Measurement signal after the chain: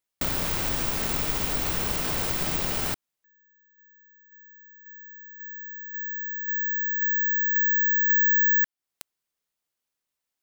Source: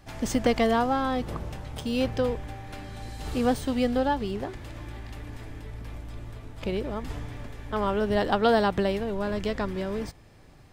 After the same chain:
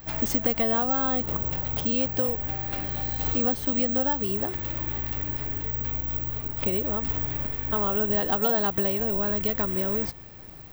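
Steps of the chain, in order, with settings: compression 3:1, threshold -33 dBFS; careless resampling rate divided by 2×, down filtered, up zero stuff; trim +5.5 dB

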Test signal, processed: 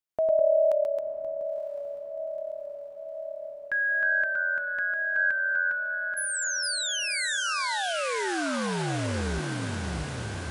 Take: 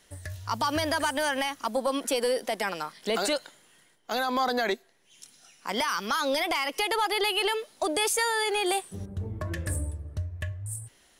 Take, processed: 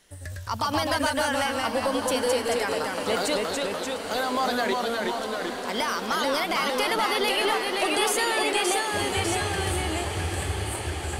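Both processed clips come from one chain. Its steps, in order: ever faster or slower copies 91 ms, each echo -1 st, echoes 2; on a send: echo that smears into a reverb 959 ms, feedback 70%, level -9 dB

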